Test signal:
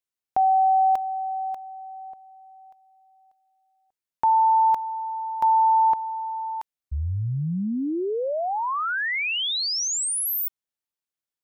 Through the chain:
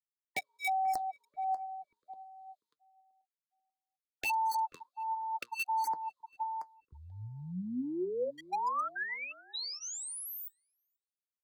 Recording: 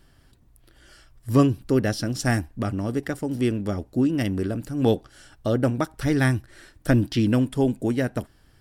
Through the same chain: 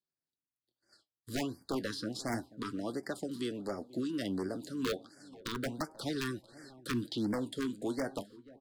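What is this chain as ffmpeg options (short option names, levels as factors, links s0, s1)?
-filter_complex "[0:a]highpass=200,aemphasis=mode=reproduction:type=50kf,bandreject=f=5600:w=5.7,agate=range=0.0224:threshold=0.00355:ratio=3:release=103:detection=rms,highshelf=f=3100:t=q:w=3:g=7.5,acrossover=split=280|600|1500[s0][s1][s2][s3];[s0]acompressor=threshold=0.00398:ratio=1.5[s4];[s1]acompressor=threshold=0.02:ratio=6[s5];[s2]acompressor=threshold=0.0398:ratio=8[s6];[s3]acompressor=threshold=0.0141:ratio=5[s7];[s4][s5][s6][s7]amix=inputs=4:normalize=0,flanger=delay=4.9:depth=7.1:regen=63:speed=0.32:shape=triangular,asplit=2[s8][s9];[s9]acrusher=bits=3:mix=0:aa=0.000001,volume=0.282[s10];[s8][s10]amix=inputs=2:normalize=0,aeval=exprs='0.0447*(abs(mod(val(0)/0.0447+3,4)-2)-1)':c=same,asplit=2[s11][s12];[s12]adelay=486,lowpass=f=1000:p=1,volume=0.112,asplit=2[s13][s14];[s14]adelay=486,lowpass=f=1000:p=1,volume=0.38,asplit=2[s15][s16];[s16]adelay=486,lowpass=f=1000:p=1,volume=0.38[s17];[s13][s15][s17]amix=inputs=3:normalize=0[s18];[s11][s18]amix=inputs=2:normalize=0,afftfilt=real='re*(1-between(b*sr/1024,640*pow(3300/640,0.5+0.5*sin(2*PI*1.4*pts/sr))/1.41,640*pow(3300/640,0.5+0.5*sin(2*PI*1.4*pts/sr))*1.41))':imag='im*(1-between(b*sr/1024,640*pow(3300/640,0.5+0.5*sin(2*PI*1.4*pts/sr))/1.41,640*pow(3300/640,0.5+0.5*sin(2*PI*1.4*pts/sr))*1.41))':win_size=1024:overlap=0.75"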